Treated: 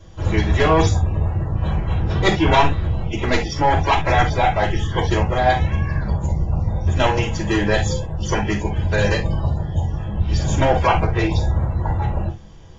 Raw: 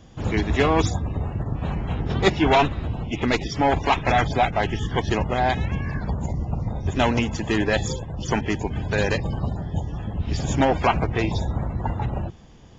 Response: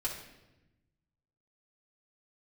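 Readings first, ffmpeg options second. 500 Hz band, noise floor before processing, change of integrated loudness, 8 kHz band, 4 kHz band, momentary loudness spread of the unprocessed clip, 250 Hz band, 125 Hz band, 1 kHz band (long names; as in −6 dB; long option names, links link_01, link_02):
+3.0 dB, −41 dBFS, +4.0 dB, can't be measured, +3.0 dB, 8 LU, +1.5 dB, +6.0 dB, +3.5 dB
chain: -filter_complex "[1:a]atrim=start_sample=2205,afade=type=out:start_time=0.15:duration=0.01,atrim=end_sample=7056,asetrate=57330,aresample=44100[link_01];[0:a][link_01]afir=irnorm=-1:irlink=0,volume=3dB"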